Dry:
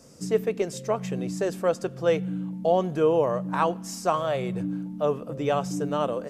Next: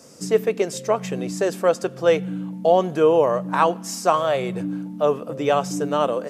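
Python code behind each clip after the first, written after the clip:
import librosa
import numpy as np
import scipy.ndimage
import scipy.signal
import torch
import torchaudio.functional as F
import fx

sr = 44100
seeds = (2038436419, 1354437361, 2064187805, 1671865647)

y = fx.highpass(x, sr, hz=270.0, slope=6)
y = y * librosa.db_to_amplitude(6.5)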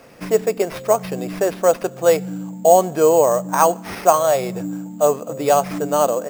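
y = fx.peak_eq(x, sr, hz=710.0, db=6.5, octaves=0.83)
y = fx.sample_hold(y, sr, seeds[0], rate_hz=7400.0, jitter_pct=0)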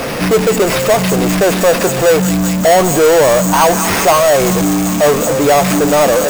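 y = fx.echo_wet_highpass(x, sr, ms=194, feedback_pct=72, hz=2000.0, wet_db=-9.5)
y = fx.power_curve(y, sr, exponent=0.35)
y = y * librosa.db_to_amplitude(-2.0)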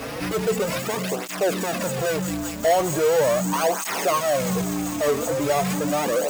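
y = fx.flanger_cancel(x, sr, hz=0.39, depth_ms=5.8)
y = y * librosa.db_to_amplitude(-9.0)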